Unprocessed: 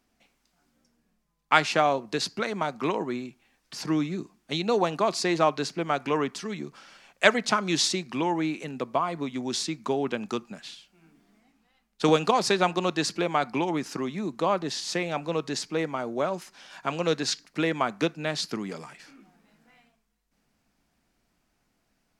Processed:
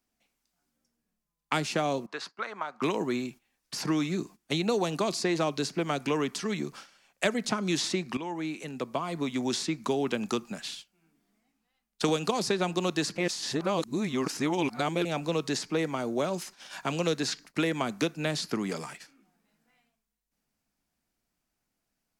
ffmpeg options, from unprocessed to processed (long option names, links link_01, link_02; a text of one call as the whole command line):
ffmpeg -i in.wav -filter_complex "[0:a]asettb=1/sr,asplit=3[link_01][link_02][link_03];[link_01]atrim=end=2.064[link_04];[link_02]atrim=start=2.06:end=2.82,asetpts=PTS-STARTPTS,afade=type=in:duration=0.004:curve=qsin,afade=type=out:start_time=0.756:duration=0.004:curve=qsin,bandpass=frequency=1200:width_type=q:width=1.8[link_05];[link_03]atrim=start=2.816[link_06];[link_04][link_05]acrossfade=duration=0.004:curve1=hsin:curve2=qsin[link_07];[link_07][link_06]acrossfade=duration=0.004:curve1=qsin:curve2=hsin,asplit=4[link_08][link_09][link_10][link_11];[link_08]atrim=end=8.17,asetpts=PTS-STARTPTS,afade=type=out:start_time=8.166:duration=0.004:curve=hsin:silence=0.177828[link_12];[link_09]atrim=start=8.17:end=13.182,asetpts=PTS-STARTPTS,afade=type=in:duration=1.29:silence=0.177828[link_13];[link_10]atrim=start=13.178:end=15.052,asetpts=PTS-STARTPTS,areverse[link_14];[link_11]atrim=start=15.048[link_15];[link_12][link_13]concat=n=2:v=0:a=1[link_16];[link_16][link_14]acrossfade=duration=0.004:curve1=hsin:curve2=hsin[link_17];[link_17][link_15]acrossfade=duration=0.004:curve1=hsin:curve2=hsin,agate=range=-14dB:threshold=-48dB:ratio=16:detection=peak,highshelf=frequency=6700:gain=10,acrossover=split=450|2500|7500[link_18][link_19][link_20][link_21];[link_18]acompressor=threshold=-30dB:ratio=4[link_22];[link_19]acompressor=threshold=-36dB:ratio=4[link_23];[link_20]acompressor=threshold=-40dB:ratio=4[link_24];[link_21]acompressor=threshold=-49dB:ratio=4[link_25];[link_22][link_23][link_24][link_25]amix=inputs=4:normalize=0,volume=3dB" out.wav